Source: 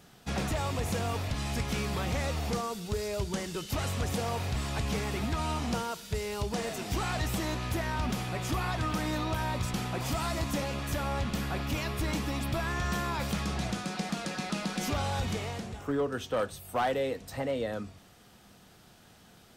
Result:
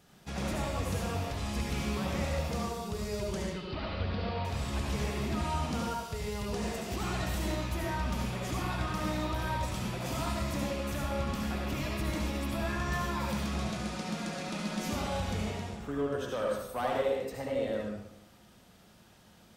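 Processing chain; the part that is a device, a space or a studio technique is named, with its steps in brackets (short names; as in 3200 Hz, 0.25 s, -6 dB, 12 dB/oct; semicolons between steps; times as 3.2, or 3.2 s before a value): 3.42–4.45 elliptic low-pass 4600 Hz, stop band 40 dB; bathroom (reverb RT60 0.85 s, pre-delay 64 ms, DRR -2 dB); gain -6 dB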